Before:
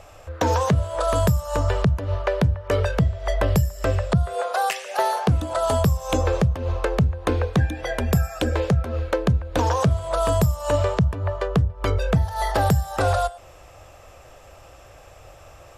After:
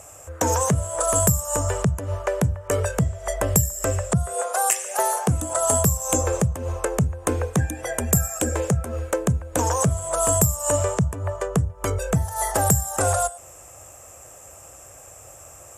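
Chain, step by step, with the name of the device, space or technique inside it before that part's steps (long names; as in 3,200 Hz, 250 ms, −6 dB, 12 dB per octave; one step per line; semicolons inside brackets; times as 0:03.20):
budget condenser microphone (high-pass filter 70 Hz; high shelf with overshoot 5,700 Hz +11.5 dB, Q 3)
level −1 dB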